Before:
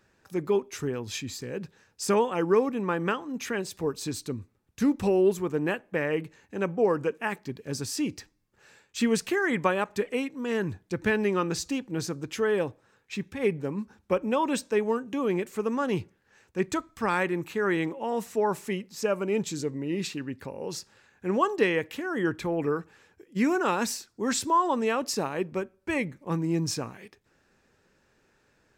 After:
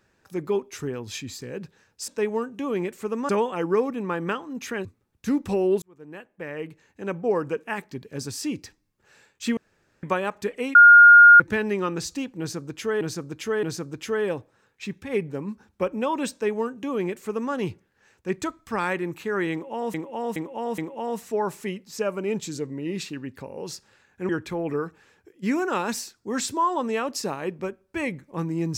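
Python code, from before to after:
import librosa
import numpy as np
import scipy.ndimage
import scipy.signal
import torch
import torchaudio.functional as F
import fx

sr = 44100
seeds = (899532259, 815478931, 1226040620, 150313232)

y = fx.edit(x, sr, fx.cut(start_s=3.64, length_s=0.75),
    fx.fade_in_span(start_s=5.36, length_s=1.46),
    fx.room_tone_fill(start_s=9.11, length_s=0.46),
    fx.bleep(start_s=10.29, length_s=0.65, hz=1420.0, db=-6.5),
    fx.repeat(start_s=11.93, length_s=0.62, count=3),
    fx.duplicate(start_s=14.62, length_s=1.21, to_s=2.08),
    fx.repeat(start_s=17.82, length_s=0.42, count=4),
    fx.cut(start_s=21.33, length_s=0.89), tone=tone)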